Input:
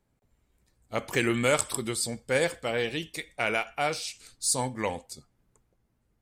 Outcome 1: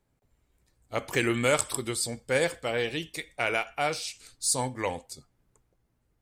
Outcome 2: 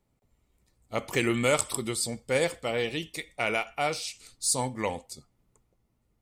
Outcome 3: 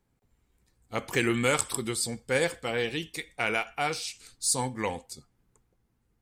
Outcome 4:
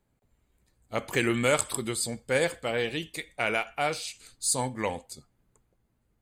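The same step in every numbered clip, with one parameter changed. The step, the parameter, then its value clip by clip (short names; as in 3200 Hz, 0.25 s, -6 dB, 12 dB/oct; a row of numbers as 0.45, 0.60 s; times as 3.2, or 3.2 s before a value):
notch, frequency: 210, 1600, 610, 5500 Hz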